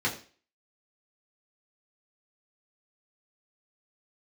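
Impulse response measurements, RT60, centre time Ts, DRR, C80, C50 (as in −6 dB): 0.40 s, 19 ms, −5.0 dB, 14.5 dB, 11.0 dB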